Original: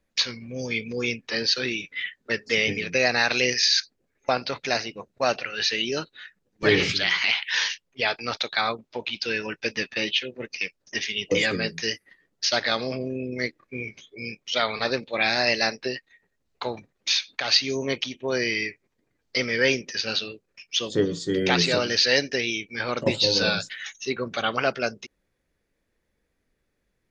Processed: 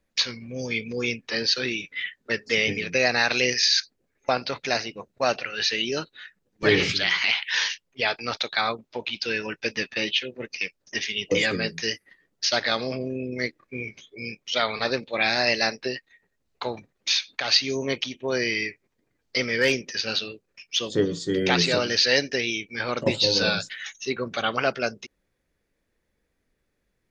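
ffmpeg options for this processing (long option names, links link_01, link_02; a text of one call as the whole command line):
ffmpeg -i in.wav -filter_complex "[0:a]asettb=1/sr,asplit=3[link_01][link_02][link_03];[link_01]atrim=end=19.604[link_04];[link_02]atrim=start=19.6:end=20.8,asetpts=PTS-STARTPTS,afade=type=in:duration=0.004:curve=qsin,afade=type=out:start_time=1.196:duration=0.004:curve=qsin,volume=13dB,asoftclip=hard,volume=-13dB[link_05];[link_03]atrim=start=20.796[link_06];[link_04][link_05]acrossfade=duration=0.004:curve1=hsin:curve2=qsin[link_07];[link_07][link_06]acrossfade=duration=0.004:curve1=qsin:curve2=hsin" out.wav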